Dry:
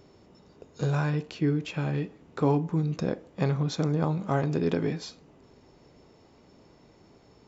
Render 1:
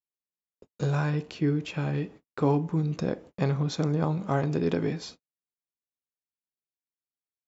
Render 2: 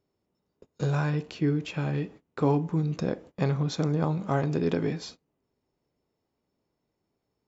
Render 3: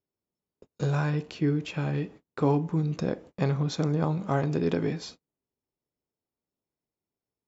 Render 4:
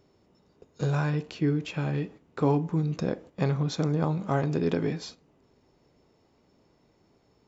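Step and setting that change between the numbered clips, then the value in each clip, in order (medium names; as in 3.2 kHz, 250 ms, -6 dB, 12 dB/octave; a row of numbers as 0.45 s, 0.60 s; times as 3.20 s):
gate, range: -56 dB, -23 dB, -36 dB, -8 dB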